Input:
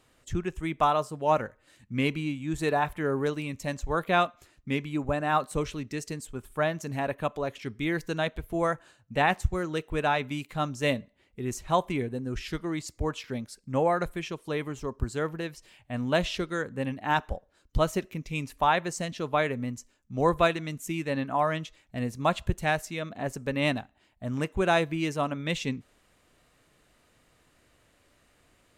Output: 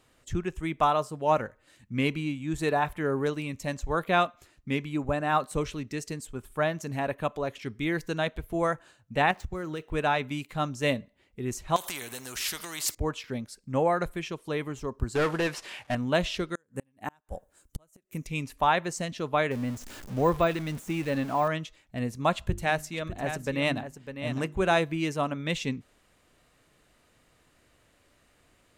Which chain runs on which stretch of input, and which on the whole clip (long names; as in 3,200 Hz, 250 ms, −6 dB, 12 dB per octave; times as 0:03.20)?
0:09.31–0:09.92: running median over 5 samples + downward compressor 12 to 1, threshold −29 dBFS
0:11.76–0:12.95: downward compressor 5 to 1, threshold −33 dBFS + spectral tilt +4.5 dB per octave + every bin compressed towards the loudest bin 2 to 1
0:15.15–0:15.95: variable-slope delta modulation 64 kbit/s + mid-hump overdrive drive 24 dB, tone 2,600 Hz, clips at −17.5 dBFS
0:16.55–0:18.27: gate with flip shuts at −21 dBFS, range −39 dB + high shelf with overshoot 6,100 Hz +11.5 dB, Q 1.5
0:19.51–0:21.48: converter with a step at zero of −37 dBFS + de-essing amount 90%
0:22.33–0:24.79: mains-hum notches 50/100/150/200/250/300/350 Hz + single-tap delay 603 ms −9.5 dB
whole clip: no processing